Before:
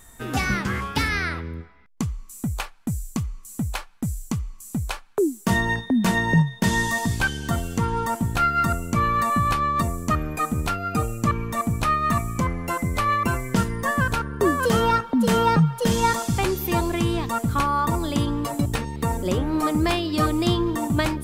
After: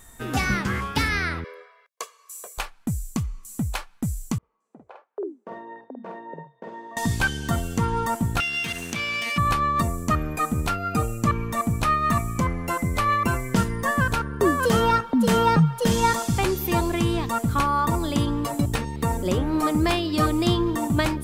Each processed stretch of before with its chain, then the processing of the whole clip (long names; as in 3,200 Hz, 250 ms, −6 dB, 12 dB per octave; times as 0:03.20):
0:01.44–0:02.58: elliptic high-pass filter 440 Hz, stop band 80 dB + comb filter 1.8 ms, depth 99%
0:04.38–0:06.97: four-pole ladder band-pass 590 Hz, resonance 40% + double-tracking delay 49 ms −3 dB
0:08.40–0:09.38: lower of the sound and its delayed copy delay 0.34 ms + meter weighting curve D + downward compressor 4 to 1, threshold −26 dBFS
whole clip: no processing